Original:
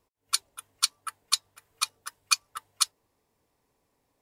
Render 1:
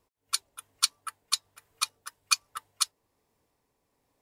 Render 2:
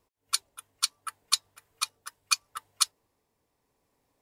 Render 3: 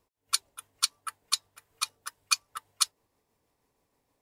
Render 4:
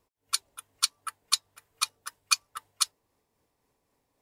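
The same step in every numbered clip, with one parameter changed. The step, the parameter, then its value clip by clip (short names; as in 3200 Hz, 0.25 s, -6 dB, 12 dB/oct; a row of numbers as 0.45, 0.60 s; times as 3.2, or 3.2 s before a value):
tremolo, rate: 1.2, 0.73, 6.3, 3.8 Hz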